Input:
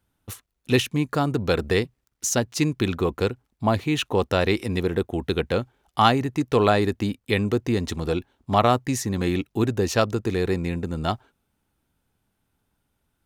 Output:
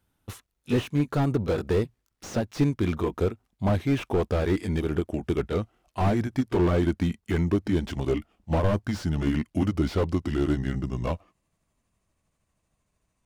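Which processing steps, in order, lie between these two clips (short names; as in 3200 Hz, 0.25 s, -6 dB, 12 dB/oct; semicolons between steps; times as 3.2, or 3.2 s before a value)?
gliding pitch shift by -5.5 st starting unshifted; slew limiter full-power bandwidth 49 Hz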